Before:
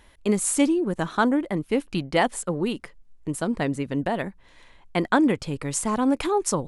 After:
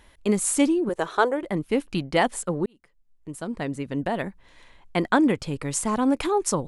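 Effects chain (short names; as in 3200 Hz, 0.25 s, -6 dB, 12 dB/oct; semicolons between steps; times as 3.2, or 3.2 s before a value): 0.89–1.43 resonant low shelf 320 Hz -8.5 dB, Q 3; 2.66–4.26 fade in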